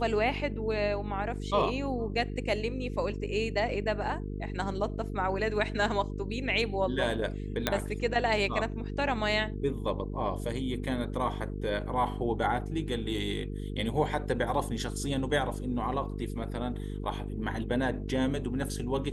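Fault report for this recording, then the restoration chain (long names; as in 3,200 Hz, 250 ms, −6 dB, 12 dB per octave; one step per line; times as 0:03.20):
mains buzz 50 Hz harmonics 9 −36 dBFS
0:07.67: click −10 dBFS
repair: click removal
hum removal 50 Hz, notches 9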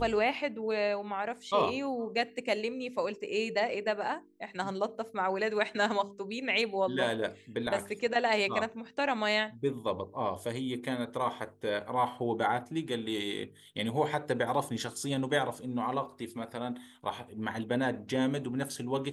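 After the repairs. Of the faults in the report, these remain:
0:07.67: click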